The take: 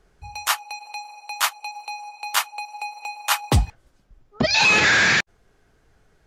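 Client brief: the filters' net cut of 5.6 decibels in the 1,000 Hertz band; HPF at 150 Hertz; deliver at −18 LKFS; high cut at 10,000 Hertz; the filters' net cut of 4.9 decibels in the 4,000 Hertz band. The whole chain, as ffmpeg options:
ffmpeg -i in.wav -af "highpass=150,lowpass=10000,equalizer=frequency=1000:width_type=o:gain=-7,equalizer=frequency=4000:width_type=o:gain=-5.5,volume=5dB" out.wav

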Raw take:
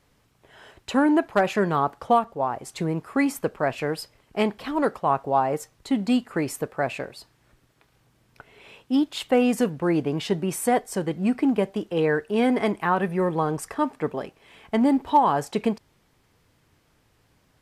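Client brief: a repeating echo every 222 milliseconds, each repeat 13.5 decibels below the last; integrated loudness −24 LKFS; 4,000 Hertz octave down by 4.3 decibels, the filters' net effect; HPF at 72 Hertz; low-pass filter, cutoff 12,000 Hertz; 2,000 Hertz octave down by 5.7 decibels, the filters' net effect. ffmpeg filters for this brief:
ffmpeg -i in.wav -af "highpass=72,lowpass=12000,equalizer=frequency=2000:width_type=o:gain=-7,equalizer=frequency=4000:width_type=o:gain=-3,aecho=1:1:222|444:0.211|0.0444,volume=1dB" out.wav

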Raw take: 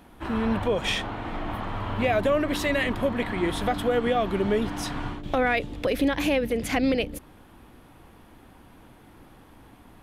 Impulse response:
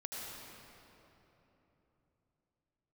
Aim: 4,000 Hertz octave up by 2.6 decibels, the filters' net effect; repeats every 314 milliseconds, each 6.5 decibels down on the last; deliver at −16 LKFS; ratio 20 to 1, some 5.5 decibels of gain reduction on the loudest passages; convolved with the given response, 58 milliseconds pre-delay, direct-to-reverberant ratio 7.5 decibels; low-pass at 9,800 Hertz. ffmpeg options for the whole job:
-filter_complex "[0:a]lowpass=9800,equalizer=frequency=4000:width_type=o:gain=3.5,acompressor=threshold=-24dB:ratio=20,aecho=1:1:314|628|942|1256|1570|1884:0.473|0.222|0.105|0.0491|0.0231|0.0109,asplit=2[link_01][link_02];[1:a]atrim=start_sample=2205,adelay=58[link_03];[link_02][link_03]afir=irnorm=-1:irlink=0,volume=-8dB[link_04];[link_01][link_04]amix=inputs=2:normalize=0,volume=12dB"

